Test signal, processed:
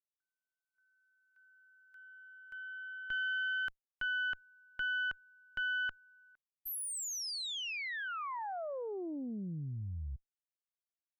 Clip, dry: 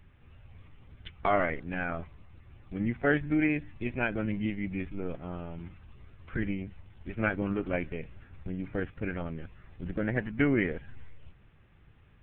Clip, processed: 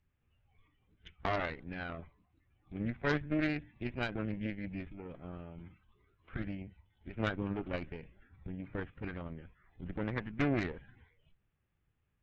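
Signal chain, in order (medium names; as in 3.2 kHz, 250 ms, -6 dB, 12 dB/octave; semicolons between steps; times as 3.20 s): Chebyshev shaper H 4 -10 dB, 5 -31 dB, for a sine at -12 dBFS; spectral noise reduction 13 dB; loudspeaker Doppler distortion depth 0.17 ms; trim -8 dB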